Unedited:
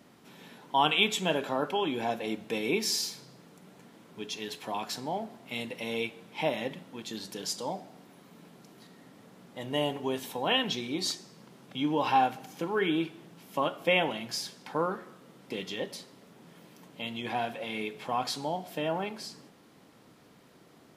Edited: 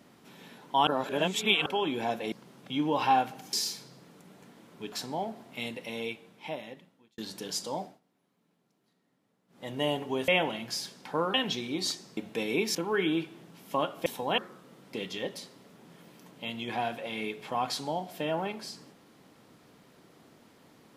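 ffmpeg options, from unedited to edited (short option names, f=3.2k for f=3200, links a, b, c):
-filter_complex "[0:a]asplit=15[a][b][c][d][e][f][g][h][i][j][k][l][m][n][o];[a]atrim=end=0.872[p];[b]atrim=start=0.868:end=1.662,asetpts=PTS-STARTPTS,areverse[q];[c]atrim=start=1.658:end=2.322[r];[d]atrim=start=11.368:end=12.582[s];[e]atrim=start=2.898:end=4.292[t];[f]atrim=start=4.858:end=7.12,asetpts=PTS-STARTPTS,afade=t=out:st=0.622:d=1.64[u];[g]atrim=start=7.12:end=7.94,asetpts=PTS-STARTPTS,afade=t=in:d=0.004:c=hsin,afade=t=out:st=0.65:d=0.17:silence=0.0944061[v];[h]atrim=start=7.94:end=9.42,asetpts=PTS-STARTPTS,volume=-20.5dB[w];[i]atrim=start=9.42:end=10.222,asetpts=PTS-STARTPTS,afade=t=in:d=0.17:silence=0.0944061[x];[j]atrim=start=13.888:end=14.952[y];[k]atrim=start=10.538:end=11.372[z];[l]atrim=start=2.318:end=2.902[aa];[m]atrim=start=12.578:end=13.892[ab];[n]atrim=start=10.218:end=10.542[ac];[o]atrim=start=14.948[ad];[p][q]acrossfade=d=0.004:c1=hsin:c2=hsin[ae];[ae][r]acrossfade=d=0.004:c1=hsin:c2=hsin[af];[af][s]acrossfade=d=0.004:c1=hsin:c2=hsin[ag];[ag][t]acrossfade=d=0.004:c1=hsin:c2=hsin[ah];[u][v][w][x]concat=n=4:v=0:a=1[ai];[ah][ai]acrossfade=d=0.004:c1=hsin:c2=hsin[aj];[aj][y]acrossfade=d=0.004:c1=hsin:c2=hsin[ak];[ak][z]acrossfade=d=0.004:c1=hsin:c2=hsin[al];[al][aa]acrossfade=d=0.004:c1=hsin:c2=hsin[am];[am][ab]acrossfade=d=0.004:c1=hsin:c2=hsin[an];[an][ac]acrossfade=d=0.004:c1=hsin:c2=hsin[ao];[ao][ad]acrossfade=d=0.004:c1=hsin:c2=hsin"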